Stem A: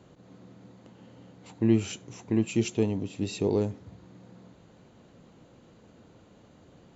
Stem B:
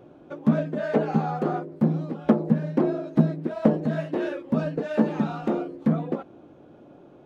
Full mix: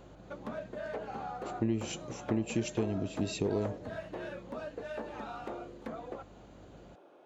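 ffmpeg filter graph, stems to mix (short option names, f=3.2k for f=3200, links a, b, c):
-filter_complex "[0:a]acompressor=threshold=-27dB:ratio=5,aeval=exprs='val(0)+0.00141*(sin(2*PI*50*n/s)+sin(2*PI*2*50*n/s)/2+sin(2*PI*3*50*n/s)/3+sin(2*PI*4*50*n/s)/4+sin(2*PI*5*50*n/s)/5)':c=same,volume=-0.5dB[a];[1:a]highpass=530,acompressor=threshold=-38dB:ratio=2.5,volume=-2.5dB[b];[a][b]amix=inputs=2:normalize=0"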